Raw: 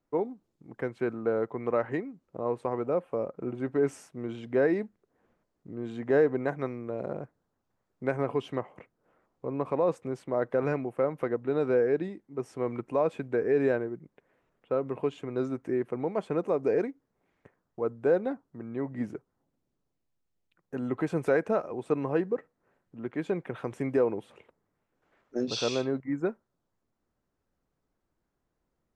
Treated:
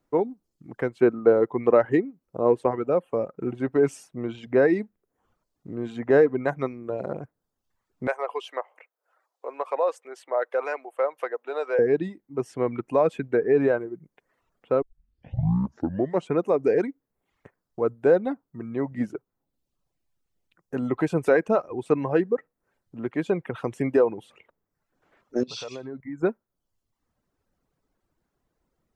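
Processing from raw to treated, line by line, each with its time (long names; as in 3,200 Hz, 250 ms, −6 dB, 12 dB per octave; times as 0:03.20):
0:00.99–0:02.71: dynamic equaliser 370 Hz, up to +6 dB, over −37 dBFS, Q 0.78
0:08.07–0:11.79: high-pass filter 530 Hz 24 dB per octave
0:13.37–0:13.77: high-shelf EQ 4,300 Hz −12 dB
0:14.82: tape start 1.54 s
0:25.43–0:26.23: downward compressor 3 to 1, threshold −40 dBFS
whole clip: reverb reduction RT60 0.84 s; level +6 dB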